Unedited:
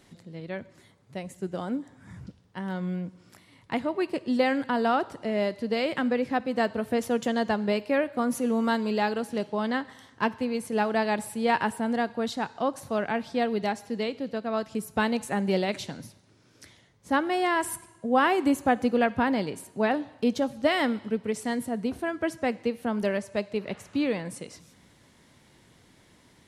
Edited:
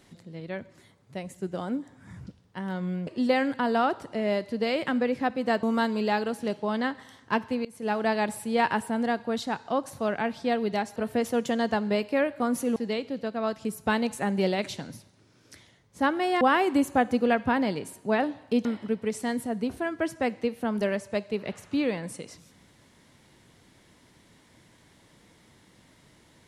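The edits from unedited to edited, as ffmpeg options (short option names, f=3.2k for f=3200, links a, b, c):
-filter_complex "[0:a]asplit=8[a][b][c][d][e][f][g][h];[a]atrim=end=3.072[i];[b]atrim=start=4.168:end=6.732[j];[c]atrim=start=8.528:end=10.55,asetpts=PTS-STARTPTS,afade=t=out:st=2.018:d=0.004:c=hsin:silence=0.0668344[k];[d]atrim=start=10.55:end=13.862,asetpts=PTS-STARTPTS,afade=t=in:d=0.48:c=qsin:silence=0.0668344[l];[e]atrim=start=6.728:end=8.532[m];[f]atrim=start=13.858:end=17.512[n];[g]atrim=start=18.118:end=20.362[o];[h]atrim=start=20.868[p];[i][j]acrossfade=d=0.004:c1=hsin:c2=hsin[q];[k][l]concat=n=2:v=0:a=1[r];[q][r]acrossfade=d=0.004:c1=hsin:c2=hsin[s];[s][m]acrossfade=d=0.004:c1=hsin:c2=hsin[t];[t][n]acrossfade=d=0.004:c1=hsin:c2=hsin[u];[u][o]acrossfade=d=0.004:c1=hsin:c2=hsin[v];[v][p]acrossfade=d=0.004:c1=hsin:c2=hsin"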